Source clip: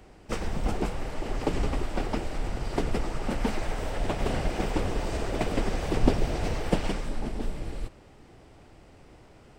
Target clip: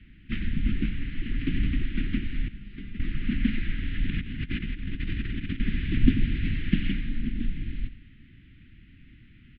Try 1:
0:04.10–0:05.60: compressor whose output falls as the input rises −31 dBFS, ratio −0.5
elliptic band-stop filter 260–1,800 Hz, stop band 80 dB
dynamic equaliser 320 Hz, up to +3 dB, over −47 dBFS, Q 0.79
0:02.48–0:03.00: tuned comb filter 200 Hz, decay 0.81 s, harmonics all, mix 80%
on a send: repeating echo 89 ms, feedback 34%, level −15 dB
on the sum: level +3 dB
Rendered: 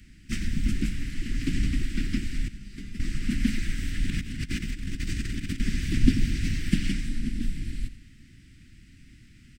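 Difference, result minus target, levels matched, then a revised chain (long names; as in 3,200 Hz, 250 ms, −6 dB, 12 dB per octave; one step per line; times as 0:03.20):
4,000 Hz band +2.5 dB
0:04.10–0:05.60: compressor whose output falls as the input rises −31 dBFS, ratio −0.5
elliptic band-stop filter 260–1,800 Hz, stop band 80 dB
dynamic equaliser 320 Hz, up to +3 dB, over −47 dBFS, Q 0.79
Butterworth low-pass 3,500 Hz 48 dB per octave
0:02.48–0:03.00: tuned comb filter 200 Hz, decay 0.81 s, harmonics all, mix 80%
on a send: repeating echo 89 ms, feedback 34%, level −15 dB
on the sum: level +3 dB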